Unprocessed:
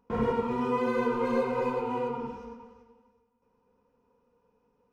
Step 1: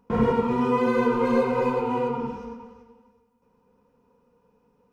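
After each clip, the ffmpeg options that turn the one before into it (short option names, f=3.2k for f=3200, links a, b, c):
-af "equalizer=f=170:t=o:w=0.83:g=5,volume=5dB"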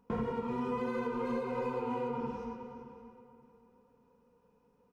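-filter_complex "[0:a]acompressor=threshold=-27dB:ratio=6,asplit=2[a][b];[b]adelay=575,lowpass=f=2.9k:p=1,volume=-12.5dB,asplit=2[c][d];[d]adelay=575,lowpass=f=2.9k:p=1,volume=0.29,asplit=2[e][f];[f]adelay=575,lowpass=f=2.9k:p=1,volume=0.29[g];[a][c][e][g]amix=inputs=4:normalize=0,volume=-5dB"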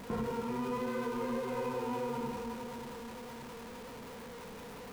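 -af "aeval=exprs='val(0)+0.5*0.0126*sgn(val(0))':c=same,volume=-3dB"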